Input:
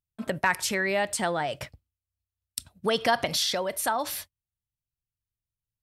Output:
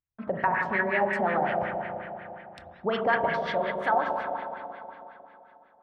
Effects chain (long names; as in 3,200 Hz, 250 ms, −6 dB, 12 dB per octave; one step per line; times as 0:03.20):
spring reverb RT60 3.2 s, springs 35/45 ms, chirp 75 ms, DRR 0 dB
auto-filter low-pass sine 5.5 Hz 700–2,100 Hz
level −4 dB